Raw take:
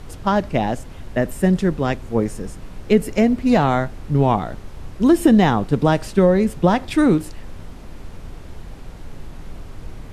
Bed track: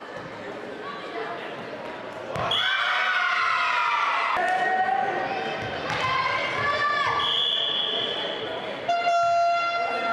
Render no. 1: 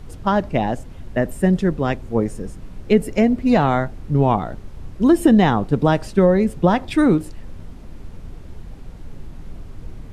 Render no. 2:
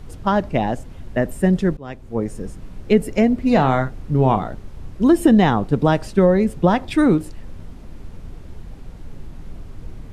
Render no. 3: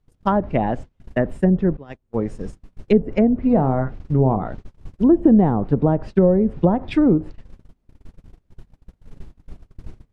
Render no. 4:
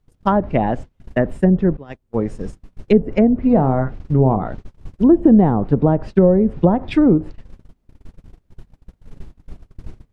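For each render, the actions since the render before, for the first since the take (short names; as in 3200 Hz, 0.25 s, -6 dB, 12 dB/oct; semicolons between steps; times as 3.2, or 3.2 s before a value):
denoiser 6 dB, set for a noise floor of -37 dBFS
1.77–2.43 fade in, from -20 dB; 3.39–4.49 doubler 38 ms -10 dB
gate -29 dBFS, range -31 dB; treble ducked by the level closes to 660 Hz, closed at -12 dBFS
gain +2.5 dB; limiter -2 dBFS, peak gain reduction 0.5 dB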